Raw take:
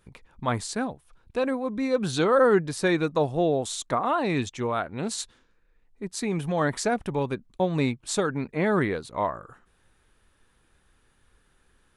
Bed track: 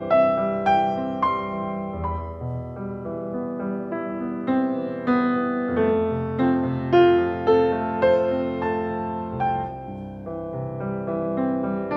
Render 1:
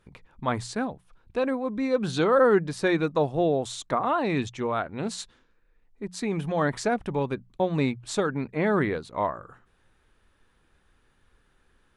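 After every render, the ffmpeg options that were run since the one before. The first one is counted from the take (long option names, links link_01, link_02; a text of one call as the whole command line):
ffmpeg -i in.wav -af "highshelf=frequency=7700:gain=-11.5,bandreject=frequency=60:width_type=h:width=6,bandreject=frequency=120:width_type=h:width=6,bandreject=frequency=180:width_type=h:width=6" out.wav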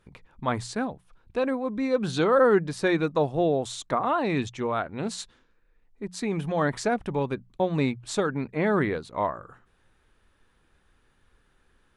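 ffmpeg -i in.wav -af anull out.wav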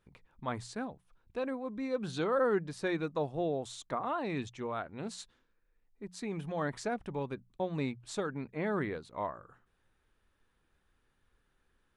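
ffmpeg -i in.wav -af "volume=-9.5dB" out.wav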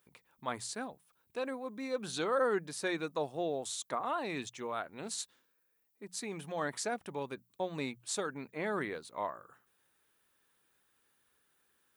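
ffmpeg -i in.wav -af "highpass=67,aemphasis=mode=production:type=bsi" out.wav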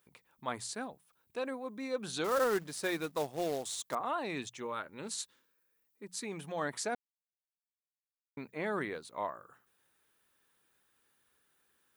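ffmpeg -i in.wav -filter_complex "[0:a]asettb=1/sr,asplit=3[link_01][link_02][link_03];[link_01]atrim=end=2.244[link_04];[link_02]atrim=start=2.24:end=3.95,asetpts=PTS-STARTPTS,afade=type=in:duration=0.004:curve=qsin,afade=type=out:start_time=1.706:duration=0.004:curve=qsin,acrusher=bits=3:mode=log:mix=0:aa=0.000001[link_05];[link_03]atrim=start=3.946[link_06];[link_04][link_05]acrossfade=duration=0.004:curve1=hsin:curve2=qsin[link_07];[link_07][link_06]acrossfade=duration=0.004:curve1=qsin:curve2=hsin,asettb=1/sr,asplit=3[link_08][link_09][link_10];[link_08]atrim=end=4.654[link_11];[link_09]atrim=start=4.65:end=6.25,asetpts=PTS-STARTPTS,afade=type=in:duration=0.004:curve=qsin,afade=type=out:start_time=1.596:duration=0.004:curve=qsin,asuperstop=centerf=710:order=4:qfactor=4.5[link_12];[link_10]atrim=start=6.246[link_13];[link_11][link_12]acrossfade=duration=0.004:curve1=hsin:curve2=qsin[link_14];[link_14][link_13]acrossfade=duration=0.004:curve1=qsin:curve2=hsin,asplit=3[link_15][link_16][link_17];[link_15]atrim=end=6.95,asetpts=PTS-STARTPTS,afade=type=out:start_time=6.946:duration=0.004:curve=hsin[link_18];[link_16]atrim=start=6.95:end=8.37,asetpts=PTS-STARTPTS,volume=0[link_19];[link_17]atrim=start=8.37,asetpts=PTS-STARTPTS,afade=type=in:duration=0.004:curve=hsin[link_20];[link_18][link_19][link_20]concat=n=3:v=0:a=1" out.wav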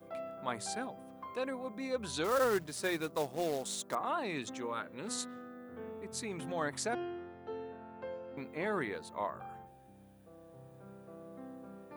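ffmpeg -i in.wav -i bed.wav -filter_complex "[1:a]volume=-25dB[link_01];[0:a][link_01]amix=inputs=2:normalize=0" out.wav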